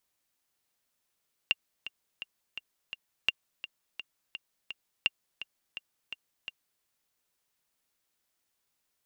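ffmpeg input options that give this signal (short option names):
-f lavfi -i "aevalsrc='pow(10,(-11-14*gte(mod(t,5*60/169),60/169))/20)*sin(2*PI*2790*mod(t,60/169))*exp(-6.91*mod(t,60/169)/0.03)':d=5.32:s=44100"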